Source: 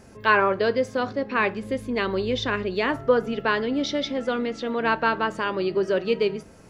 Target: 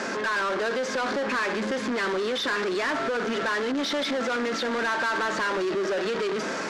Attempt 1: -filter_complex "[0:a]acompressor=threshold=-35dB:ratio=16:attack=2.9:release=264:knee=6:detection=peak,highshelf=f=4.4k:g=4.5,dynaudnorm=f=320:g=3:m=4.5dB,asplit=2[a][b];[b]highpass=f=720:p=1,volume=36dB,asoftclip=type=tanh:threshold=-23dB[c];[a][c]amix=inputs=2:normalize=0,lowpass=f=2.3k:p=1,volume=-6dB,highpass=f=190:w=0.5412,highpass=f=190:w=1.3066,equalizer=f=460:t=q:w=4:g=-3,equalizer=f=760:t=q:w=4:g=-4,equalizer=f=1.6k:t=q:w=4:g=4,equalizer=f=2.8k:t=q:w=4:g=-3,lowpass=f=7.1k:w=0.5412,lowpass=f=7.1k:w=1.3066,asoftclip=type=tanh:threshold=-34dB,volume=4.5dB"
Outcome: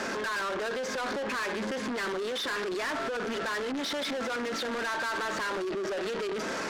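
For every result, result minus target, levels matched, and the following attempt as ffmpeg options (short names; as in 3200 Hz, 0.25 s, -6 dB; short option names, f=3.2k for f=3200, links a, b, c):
compressor: peak gain reduction +8 dB; soft clip: distortion +6 dB
-filter_complex "[0:a]acompressor=threshold=-26.5dB:ratio=16:attack=2.9:release=264:knee=6:detection=peak,highshelf=f=4.4k:g=4.5,dynaudnorm=f=320:g=3:m=4.5dB,asplit=2[a][b];[b]highpass=f=720:p=1,volume=36dB,asoftclip=type=tanh:threshold=-23dB[c];[a][c]amix=inputs=2:normalize=0,lowpass=f=2.3k:p=1,volume=-6dB,highpass=f=190:w=0.5412,highpass=f=190:w=1.3066,equalizer=f=460:t=q:w=4:g=-3,equalizer=f=760:t=q:w=4:g=-4,equalizer=f=1.6k:t=q:w=4:g=4,equalizer=f=2.8k:t=q:w=4:g=-3,lowpass=f=7.1k:w=0.5412,lowpass=f=7.1k:w=1.3066,asoftclip=type=tanh:threshold=-34dB,volume=4.5dB"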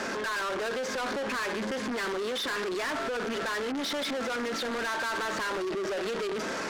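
soft clip: distortion +7 dB
-filter_complex "[0:a]acompressor=threshold=-26.5dB:ratio=16:attack=2.9:release=264:knee=6:detection=peak,highshelf=f=4.4k:g=4.5,dynaudnorm=f=320:g=3:m=4.5dB,asplit=2[a][b];[b]highpass=f=720:p=1,volume=36dB,asoftclip=type=tanh:threshold=-23dB[c];[a][c]amix=inputs=2:normalize=0,lowpass=f=2.3k:p=1,volume=-6dB,highpass=f=190:w=0.5412,highpass=f=190:w=1.3066,equalizer=f=460:t=q:w=4:g=-3,equalizer=f=760:t=q:w=4:g=-4,equalizer=f=1.6k:t=q:w=4:g=4,equalizer=f=2.8k:t=q:w=4:g=-3,lowpass=f=7.1k:w=0.5412,lowpass=f=7.1k:w=1.3066,asoftclip=type=tanh:threshold=-26dB,volume=4.5dB"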